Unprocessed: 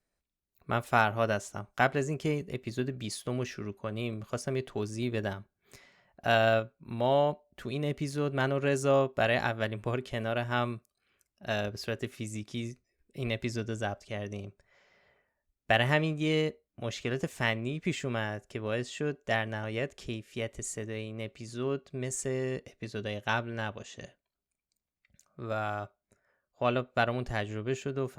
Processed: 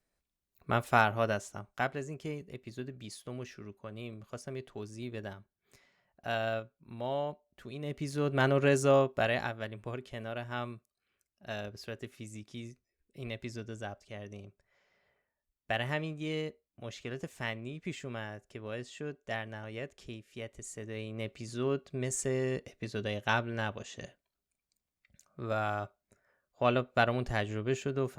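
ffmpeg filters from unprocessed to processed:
-af "volume=20dB,afade=t=out:st=0.83:d=1.18:silence=0.354813,afade=t=in:st=7.79:d=0.78:silence=0.266073,afade=t=out:st=8.57:d=1.02:silence=0.298538,afade=t=in:st=20.7:d=0.55:silence=0.398107"

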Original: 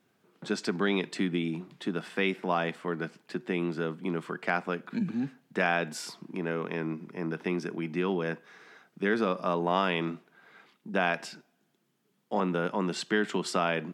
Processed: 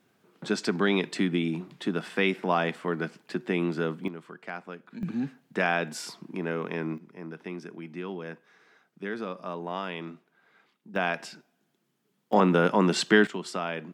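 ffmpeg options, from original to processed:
-af "asetnsamples=n=441:p=0,asendcmd='4.08 volume volume -9dB;5.03 volume volume 1dB;6.98 volume volume -7dB;10.96 volume volume -0.5dB;12.33 volume volume 7.5dB;13.27 volume volume -4dB',volume=3dB"

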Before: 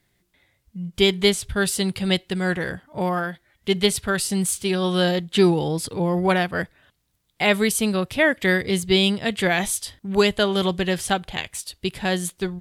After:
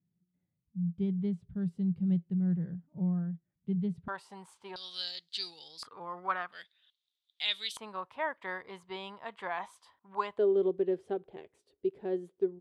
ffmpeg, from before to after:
-af "asetnsamples=n=441:p=0,asendcmd='4.08 bandpass f 940;4.76 bandpass f 4500;5.83 bandpass f 1200;6.52 bandpass f 3600;7.77 bandpass f 1000;10.38 bandpass f 400',bandpass=f=170:t=q:w=6.3:csg=0"

